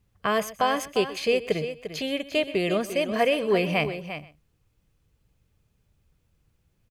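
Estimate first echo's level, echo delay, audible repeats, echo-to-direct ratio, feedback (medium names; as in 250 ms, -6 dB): -17.5 dB, 126 ms, 3, -9.5 dB, no regular repeats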